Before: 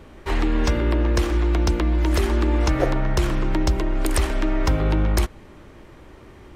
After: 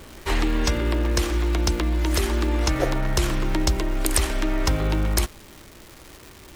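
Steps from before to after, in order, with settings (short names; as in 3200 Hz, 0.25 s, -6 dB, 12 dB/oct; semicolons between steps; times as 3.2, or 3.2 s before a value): high shelf 3100 Hz +10 dB; in parallel at +2 dB: vocal rider 0.5 s; on the sum: crackle 530/s -24 dBFS; gain -9.5 dB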